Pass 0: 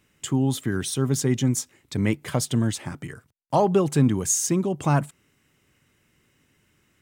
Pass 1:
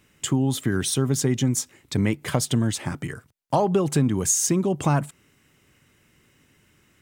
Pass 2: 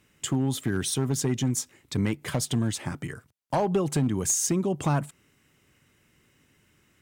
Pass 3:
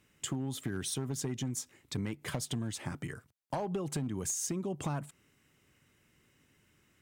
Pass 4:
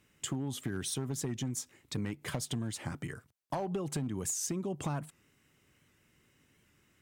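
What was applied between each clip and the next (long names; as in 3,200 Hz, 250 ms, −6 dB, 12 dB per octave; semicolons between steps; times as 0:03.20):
downward compressor 3 to 1, threshold −23 dBFS, peak gain reduction 7.5 dB; level +4.5 dB
asymmetric clip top −14.5 dBFS; level −3.5 dB
downward compressor 4 to 1, threshold −28 dBFS, peak gain reduction 7.5 dB; level −4.5 dB
wow of a warped record 78 rpm, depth 100 cents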